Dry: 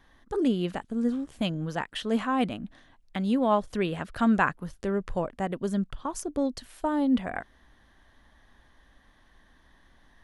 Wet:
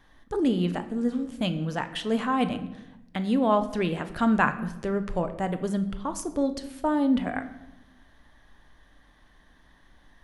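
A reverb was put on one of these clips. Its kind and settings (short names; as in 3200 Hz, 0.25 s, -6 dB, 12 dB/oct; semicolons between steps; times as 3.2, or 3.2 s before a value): shoebox room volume 350 m³, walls mixed, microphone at 0.43 m; gain +1 dB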